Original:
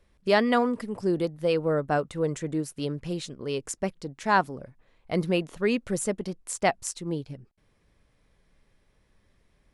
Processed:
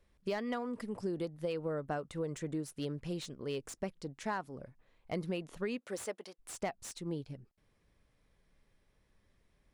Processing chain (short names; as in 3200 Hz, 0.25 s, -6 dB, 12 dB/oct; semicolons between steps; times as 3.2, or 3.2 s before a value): 5.77–6.38 HPF 310 Hz -> 760 Hz 12 dB/oct; compressor 20:1, threshold -26 dBFS, peak gain reduction 11.5 dB; slew limiter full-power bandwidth 98 Hz; gain -6 dB